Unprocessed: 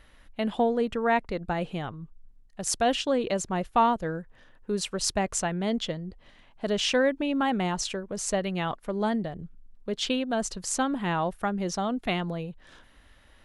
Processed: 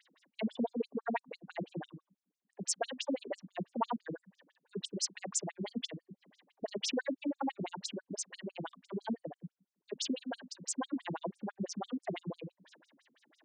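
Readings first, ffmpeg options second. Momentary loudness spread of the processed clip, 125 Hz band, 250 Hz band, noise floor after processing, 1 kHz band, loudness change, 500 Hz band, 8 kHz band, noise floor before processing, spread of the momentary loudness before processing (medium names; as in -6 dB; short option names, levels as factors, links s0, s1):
13 LU, -12.0 dB, -10.0 dB, under -85 dBFS, -14.0 dB, -11.0 dB, -13.0 dB, -7.0 dB, -57 dBFS, 12 LU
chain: -filter_complex "[0:a]bandreject=f=1300:w=8.5,bandreject=f=62.79:t=h:w=4,bandreject=f=125.58:t=h:w=4,bandreject=f=188.37:t=h:w=4,bandreject=f=251.16:t=h:w=4,asplit=2[s0][s1];[s1]acompressor=threshold=0.0178:ratio=4,volume=0.794[s2];[s0][s2]amix=inputs=2:normalize=0,afftfilt=real='re*between(b*sr/1024,210*pow(7100/210,0.5+0.5*sin(2*PI*6*pts/sr))/1.41,210*pow(7100/210,0.5+0.5*sin(2*PI*6*pts/sr))*1.41)':imag='im*between(b*sr/1024,210*pow(7100/210,0.5+0.5*sin(2*PI*6*pts/sr))/1.41,210*pow(7100/210,0.5+0.5*sin(2*PI*6*pts/sr))*1.41)':win_size=1024:overlap=0.75,volume=0.631"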